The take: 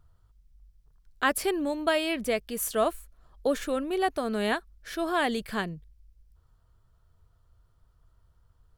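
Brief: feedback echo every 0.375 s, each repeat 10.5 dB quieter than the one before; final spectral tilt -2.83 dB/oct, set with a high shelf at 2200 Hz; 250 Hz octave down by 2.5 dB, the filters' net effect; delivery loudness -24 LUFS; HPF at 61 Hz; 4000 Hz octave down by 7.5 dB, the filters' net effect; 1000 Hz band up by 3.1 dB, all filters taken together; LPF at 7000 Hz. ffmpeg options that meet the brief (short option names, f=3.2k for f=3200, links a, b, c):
-af "highpass=61,lowpass=7k,equalizer=f=250:t=o:g=-3.5,equalizer=f=1k:t=o:g=5.5,highshelf=f=2.2k:g=-3.5,equalizer=f=4k:t=o:g=-7.5,aecho=1:1:375|750|1125:0.299|0.0896|0.0269,volume=5dB"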